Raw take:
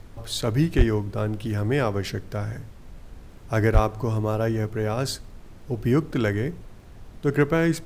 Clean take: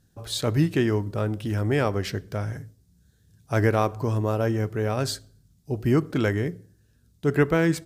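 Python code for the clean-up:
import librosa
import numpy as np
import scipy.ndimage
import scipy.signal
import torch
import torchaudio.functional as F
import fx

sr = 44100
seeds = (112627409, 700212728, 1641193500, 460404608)

y = fx.fix_declip(x, sr, threshold_db=-8.0)
y = fx.fix_declick_ar(y, sr, threshold=6.5)
y = fx.highpass(y, sr, hz=140.0, slope=24, at=(0.77, 0.89), fade=0.02)
y = fx.highpass(y, sr, hz=140.0, slope=24, at=(3.73, 3.85), fade=0.02)
y = fx.noise_reduce(y, sr, print_start_s=6.73, print_end_s=7.23, reduce_db=18.0)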